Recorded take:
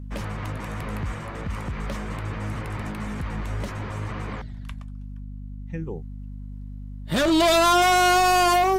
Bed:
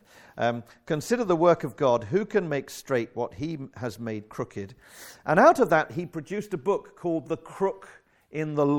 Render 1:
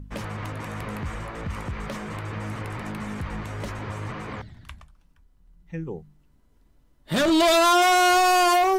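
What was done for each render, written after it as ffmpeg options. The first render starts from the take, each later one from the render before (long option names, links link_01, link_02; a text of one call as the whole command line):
ffmpeg -i in.wav -af "bandreject=frequency=50:width_type=h:width=4,bandreject=frequency=100:width_type=h:width=4,bandreject=frequency=150:width_type=h:width=4,bandreject=frequency=200:width_type=h:width=4,bandreject=frequency=250:width_type=h:width=4" out.wav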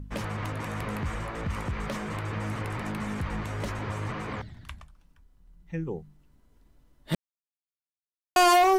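ffmpeg -i in.wav -filter_complex "[0:a]asplit=3[link_01][link_02][link_03];[link_01]atrim=end=7.15,asetpts=PTS-STARTPTS,afade=type=out:start_time=7.146:duration=0.004:curve=hsin[link_04];[link_02]atrim=start=7.15:end=8.36,asetpts=PTS-STARTPTS,volume=0[link_05];[link_03]atrim=start=8.36,asetpts=PTS-STARTPTS,afade=type=in:duration=0.004:curve=hsin[link_06];[link_04][link_05][link_06]concat=n=3:v=0:a=1" out.wav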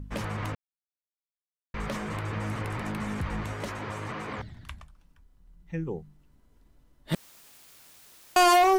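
ffmpeg -i in.wav -filter_complex "[0:a]asettb=1/sr,asplit=3[link_01][link_02][link_03];[link_01]atrim=end=3.534[link_04];[link_02]atrim=start=3.53:end=4.39,asetpts=PTS-STARTPTS,afade=type=in:duration=0.004:curve=qsin,afade=type=out:start_time=0.856:duration=0.004:curve=qsin,lowshelf=frequency=110:gain=-11.5[link_05];[link_03]atrim=start=4.386[link_06];[link_04][link_05]acrossfade=duration=0.004:curve1=hsin:curve2=qsin[link_07];[link_07][link_06]acrossfade=duration=0.004:curve1=qsin:curve2=hsin,asettb=1/sr,asplit=3[link_08][link_09][link_10];[link_08]atrim=end=7.144[link_11];[link_09]atrim=start=7.14:end=8.43,asetpts=PTS-STARTPTS,afade=type=in:duration=0.004:curve=qsin,afade=type=out:start_time=1.286:duration=0.004:curve=qsin,aeval=exprs='val(0)+0.5*0.00794*sgn(val(0))':channel_layout=same[link_12];[link_10]atrim=start=8.426[link_13];[link_11][link_12]acrossfade=duration=0.004:curve1=hsin:curve2=qsin[link_14];[link_14][link_13]acrossfade=duration=0.004:curve1=qsin:curve2=hsin,asplit=3[link_15][link_16][link_17];[link_15]atrim=end=0.55,asetpts=PTS-STARTPTS,afade=type=out:start_time=0.546:duration=0.004:curve=hsin[link_18];[link_16]atrim=start=0.55:end=1.74,asetpts=PTS-STARTPTS,volume=0[link_19];[link_17]atrim=start=1.74,asetpts=PTS-STARTPTS,afade=type=in:duration=0.004:curve=hsin[link_20];[link_18][link_19][link_20]concat=n=3:v=0:a=1" out.wav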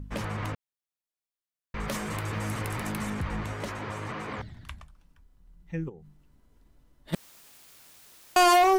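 ffmpeg -i in.wav -filter_complex "[0:a]asettb=1/sr,asplit=3[link_01][link_02][link_03];[link_01]atrim=end=1.884[link_04];[link_02]atrim=start=1.88:end=3.1,asetpts=PTS-STARTPTS,afade=type=in:duration=0.004:curve=qsin,afade=type=out:start_time=1.216:duration=0.004:curve=qsin,aemphasis=mode=production:type=50kf[link_05];[link_03]atrim=start=3.096[link_06];[link_04][link_05]acrossfade=duration=0.004:curve1=hsin:curve2=qsin[link_07];[link_07][link_06]acrossfade=duration=0.004:curve1=qsin:curve2=hsin,asplit=3[link_08][link_09][link_10];[link_08]afade=type=out:start_time=5.88:duration=0.02[link_11];[link_09]acompressor=threshold=-44dB:ratio=6:attack=3.2:release=140:knee=1:detection=peak,afade=type=in:start_time=5.88:duration=0.02,afade=type=out:start_time=7.12:duration=0.02[link_12];[link_10]afade=type=in:start_time=7.12:duration=0.02[link_13];[link_11][link_12][link_13]amix=inputs=3:normalize=0" out.wav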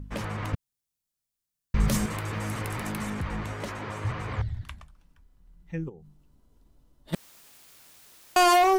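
ffmpeg -i in.wav -filter_complex "[0:a]asettb=1/sr,asplit=3[link_01][link_02][link_03];[link_01]atrim=end=0.534[link_04];[link_02]atrim=start=0.53:end=2.06,asetpts=PTS-STARTPTS,afade=type=in:duration=0.004:curve=qsin,afade=type=out:start_time=1.526:duration=0.004:curve=qsin,bass=frequency=250:gain=14,treble=frequency=4000:gain=8[link_05];[link_03]atrim=start=2.056[link_06];[link_04][link_05]acrossfade=duration=0.004:curve1=hsin:curve2=qsin[link_07];[link_07][link_06]acrossfade=duration=0.004:curve1=qsin:curve2=hsin,asettb=1/sr,asplit=3[link_08][link_09][link_10];[link_08]atrim=end=4.044[link_11];[link_09]atrim=start=4.04:end=4.63,asetpts=PTS-STARTPTS,afade=type=in:duration=0.004:curve=qsin,afade=type=out:start_time=0.586:duration=0.004:curve=qsin,lowshelf=frequency=140:width_type=q:width=1.5:gain=12[link_12];[link_10]atrim=start=4.626[link_13];[link_11][link_12]acrossfade=duration=0.004:curve1=hsin:curve2=qsin[link_14];[link_14][link_13]acrossfade=duration=0.004:curve1=qsin:curve2=hsin,asettb=1/sr,asplit=3[link_15][link_16][link_17];[link_15]atrim=end=5.784[link_18];[link_16]atrim=start=5.78:end=7.13,asetpts=PTS-STARTPTS,afade=type=in:duration=0.004:curve=qsin,afade=type=out:start_time=1.346:duration=0.004:curve=qsin,equalizer=frequency=1900:width_type=o:width=0.91:gain=-7.5[link_19];[link_17]atrim=start=7.126[link_20];[link_18][link_19]acrossfade=duration=0.004:curve1=hsin:curve2=qsin[link_21];[link_21][link_20]acrossfade=duration=0.004:curve1=qsin:curve2=hsin" out.wav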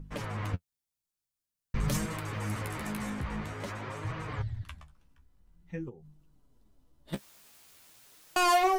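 ffmpeg -i in.wav -af "asoftclip=type=tanh:threshold=-13.5dB,flanger=delay=6.2:depth=9:regen=28:speed=0.48:shape=sinusoidal" out.wav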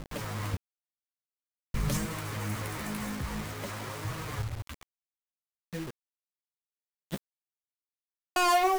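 ffmpeg -i in.wav -af "acrusher=bits=6:mix=0:aa=0.000001" out.wav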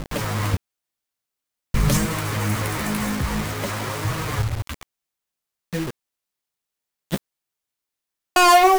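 ffmpeg -i in.wav -af "volume=11dB" out.wav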